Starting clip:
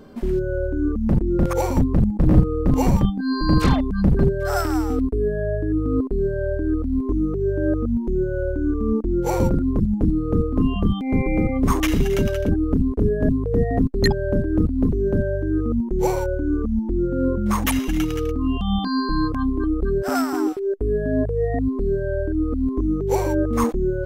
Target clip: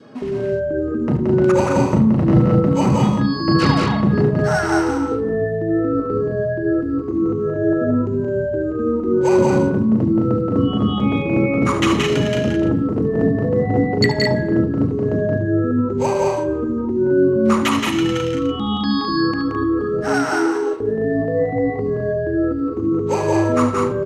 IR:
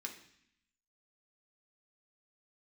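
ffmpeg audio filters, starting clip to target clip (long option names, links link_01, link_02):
-filter_complex "[0:a]adynamicequalizer=threshold=0.0178:dfrequency=700:dqfactor=1.6:tfrequency=700:tqfactor=1.6:attack=5:release=100:ratio=0.375:range=1.5:mode=cutabove:tftype=bell,asetrate=46722,aresample=44100,atempo=0.943874,highpass=120,lowpass=6500,aecho=1:1:72.89|174.9|212.8:0.282|0.708|0.562,asplit=2[link_01][link_02];[1:a]atrim=start_sample=2205,afade=type=out:start_time=0.24:duration=0.01,atrim=end_sample=11025,asetrate=22932,aresample=44100[link_03];[link_02][link_03]afir=irnorm=-1:irlink=0,volume=-3.5dB[link_04];[link_01][link_04]amix=inputs=2:normalize=0"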